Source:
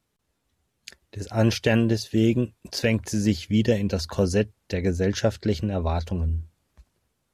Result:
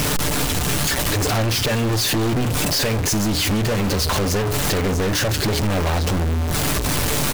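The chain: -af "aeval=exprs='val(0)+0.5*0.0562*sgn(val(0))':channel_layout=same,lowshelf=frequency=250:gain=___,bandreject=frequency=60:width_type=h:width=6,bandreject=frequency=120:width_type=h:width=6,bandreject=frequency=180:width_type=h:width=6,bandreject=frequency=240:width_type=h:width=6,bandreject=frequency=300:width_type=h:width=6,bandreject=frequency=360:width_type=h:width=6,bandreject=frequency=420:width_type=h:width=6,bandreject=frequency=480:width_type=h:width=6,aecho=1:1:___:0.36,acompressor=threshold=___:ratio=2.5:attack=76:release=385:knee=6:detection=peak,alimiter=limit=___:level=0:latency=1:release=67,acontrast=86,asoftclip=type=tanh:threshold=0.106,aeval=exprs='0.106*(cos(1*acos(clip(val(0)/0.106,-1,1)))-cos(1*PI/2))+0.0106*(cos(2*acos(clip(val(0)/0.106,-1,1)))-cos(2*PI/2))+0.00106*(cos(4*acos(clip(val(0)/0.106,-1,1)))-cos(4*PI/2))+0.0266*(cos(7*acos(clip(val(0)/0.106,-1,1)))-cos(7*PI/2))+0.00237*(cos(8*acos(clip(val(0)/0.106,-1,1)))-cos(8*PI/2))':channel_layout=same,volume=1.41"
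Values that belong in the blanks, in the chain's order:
2.5, 6.8, 0.0631, 0.158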